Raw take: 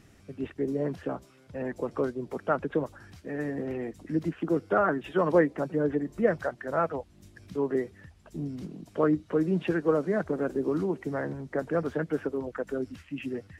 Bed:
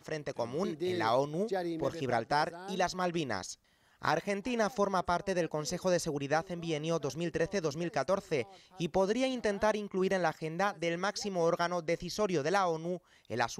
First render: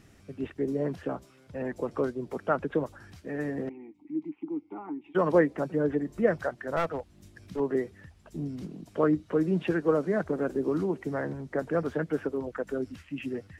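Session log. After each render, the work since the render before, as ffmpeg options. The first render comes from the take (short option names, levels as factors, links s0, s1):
-filter_complex "[0:a]asettb=1/sr,asplit=3[s0][s1][s2];[s0]atrim=end=3.694[s3];[s1]atrim=start=3.69:end=5.15,asetpts=PTS-STARTPTS,afade=t=in:d=0.004:c=qsin,afade=t=out:st=1.456:d=0.004:c=qsin,asplit=3[s4][s5][s6];[s4]bandpass=f=300:t=q:w=8,volume=1[s7];[s5]bandpass=f=870:t=q:w=8,volume=0.501[s8];[s6]bandpass=f=2240:t=q:w=8,volume=0.355[s9];[s7][s8][s9]amix=inputs=3:normalize=0[s10];[s2]atrim=start=5.146[s11];[s3][s10]acrossfade=d=0.004:c1=hsin:c2=qsin[s12];[s12][s11]acrossfade=d=0.004:c1=qsin:c2=hsin,asettb=1/sr,asplit=3[s13][s14][s15];[s13]atrim=end=6.764[s16];[s14]atrim=start=6.76:end=7.6,asetpts=PTS-STARTPTS,afade=t=in:d=0.004:c=qsin,afade=t=out:st=0.836:d=0.004:c=qsin,aeval=exprs='clip(val(0),-1,0.0335)':c=same[s17];[s15]atrim=start=7.596[s18];[s16][s17]acrossfade=d=0.004:c1=hsin:c2=qsin[s19];[s19][s18]acrossfade=d=0.004:c1=qsin:c2=hsin"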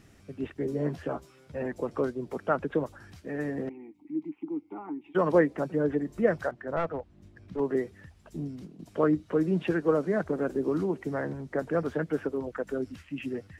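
-filter_complex "[0:a]asettb=1/sr,asplit=3[s0][s1][s2];[s0]atrim=end=0.594[s3];[s1]atrim=start=0.59:end=1.66,asetpts=PTS-STARTPTS,afade=t=in:d=0.004:c=qsin,afade=t=out:st=1.066:d=0.004:c=qsin,asplit=2[s4][s5];[s5]adelay=13,volume=0.562[s6];[s4][s6]amix=inputs=2:normalize=0,atrim=end_sample=47187[s7];[s2]atrim=start=1.656[s8];[s3][s7]acrossfade=d=0.004:c1=hsin:c2=qsin[s9];[s9][s8]acrossfade=d=0.004:c1=qsin:c2=hsin,asettb=1/sr,asplit=3[s10][s11][s12];[s10]atrim=end=6.514[s13];[s11]atrim=start=6.51:end=7.59,asetpts=PTS-STARTPTS,afade=t=in:d=0.004:c=qsin,afade=t=out:st=1.076:d=0.004:c=qsin,lowpass=f=1500:p=1[s14];[s12]atrim=start=7.586[s15];[s13][s14]acrossfade=d=0.004:c1=hsin:c2=qsin[s16];[s16][s15]acrossfade=d=0.004:c1=qsin:c2=hsin,asplit=2[s17][s18];[s17]atrim=end=8.79,asetpts=PTS-STARTPTS,afade=t=out:st=8.37:d=0.42:silence=0.298538[s19];[s18]atrim=start=8.79,asetpts=PTS-STARTPTS,afade=t=in:d=0.004:c=hsin:silence=0.298538[s20];[s19][s20]concat=n=2:v=0:a=1"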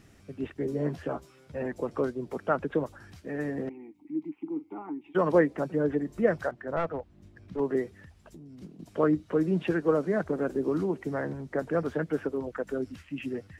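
-filter_complex "[0:a]asettb=1/sr,asplit=3[s0][s1][s2];[s0]atrim=end=4.354[s3];[s1]atrim=start=4.35:end=4.83,asetpts=PTS-STARTPTS,afade=t=in:d=0.004:c=qsin,afade=t=out:st=0.476:d=0.004:c=qsin,asplit=2[s4][s5];[s5]adelay=43,volume=0.211[s6];[s4][s6]amix=inputs=2:normalize=0,atrim=end_sample=21168[s7];[s2]atrim=start=4.826[s8];[s3][s7]acrossfade=d=0.004:c1=hsin:c2=qsin[s9];[s9][s8]acrossfade=d=0.004:c1=qsin:c2=hsin,asettb=1/sr,asplit=3[s10][s11][s12];[s10]atrim=end=7.994[s13];[s11]atrim=start=7.99:end=8.62,asetpts=PTS-STARTPTS,afade=t=in:d=0.004:c=qsin,afade=t=out:st=0.626:d=0.004:c=qsin,acompressor=threshold=0.00631:ratio=10:attack=3.2:release=140:knee=1:detection=peak[s14];[s12]atrim=start=8.616[s15];[s13][s14]acrossfade=d=0.004:c1=hsin:c2=qsin[s16];[s16][s15]acrossfade=d=0.004:c1=qsin:c2=hsin"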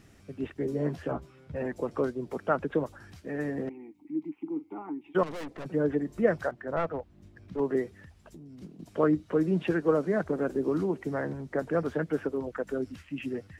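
-filter_complex "[0:a]asettb=1/sr,asplit=3[s0][s1][s2];[s0]atrim=end=1.114[s3];[s1]atrim=start=1.11:end=1.56,asetpts=PTS-STARTPTS,afade=t=in:d=0.004:c=qsin,afade=t=out:st=0.446:d=0.004:c=qsin,bass=f=250:g=7,treble=f=4000:g=-9[s4];[s2]atrim=start=1.556[s5];[s3][s4]acrossfade=d=0.004:c1=hsin:c2=qsin[s6];[s6][s5]acrossfade=d=0.004:c1=qsin:c2=hsin,asettb=1/sr,asplit=3[s7][s8][s9];[s7]atrim=end=5.234[s10];[s8]atrim=start=5.23:end=5.66,asetpts=PTS-STARTPTS,afade=t=in:d=0.004:c=qsin,afade=t=out:st=0.426:d=0.004:c=qsin,aeval=exprs='(tanh(70.8*val(0)+0.65)-tanh(0.65))/70.8':c=same[s11];[s9]atrim=start=5.656[s12];[s10][s11]acrossfade=d=0.004:c1=hsin:c2=qsin[s13];[s13][s12]acrossfade=d=0.004:c1=qsin:c2=hsin"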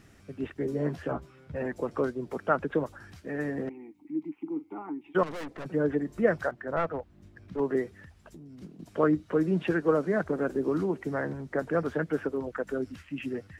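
-af "equalizer=f=1500:w=1.5:g=3"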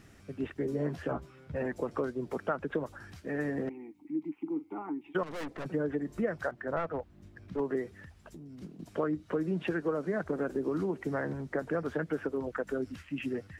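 -af "acompressor=threshold=0.0398:ratio=5"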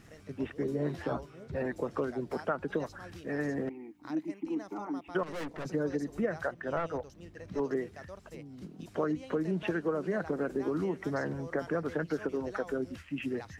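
-filter_complex "[1:a]volume=0.141[s0];[0:a][s0]amix=inputs=2:normalize=0"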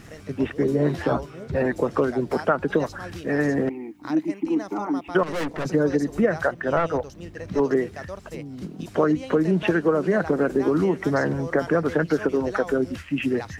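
-af "volume=3.55"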